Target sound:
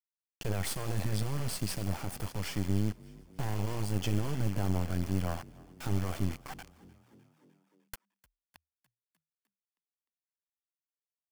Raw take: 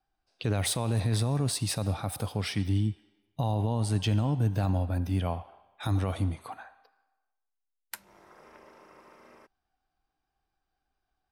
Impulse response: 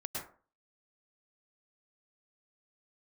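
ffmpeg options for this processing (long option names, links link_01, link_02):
-filter_complex "[0:a]highshelf=frequency=11000:gain=-6.5,acrusher=bits=4:dc=4:mix=0:aa=0.000001,bandreject=frequency=3800:width=7.5,asplit=6[link_01][link_02][link_03][link_04][link_05][link_06];[link_02]adelay=303,afreqshift=39,volume=-23dB[link_07];[link_03]adelay=606,afreqshift=78,volume=-27.2dB[link_08];[link_04]adelay=909,afreqshift=117,volume=-31.3dB[link_09];[link_05]adelay=1212,afreqshift=156,volume=-35.5dB[link_10];[link_06]adelay=1515,afreqshift=195,volume=-39.6dB[link_11];[link_01][link_07][link_08][link_09][link_10][link_11]amix=inputs=6:normalize=0"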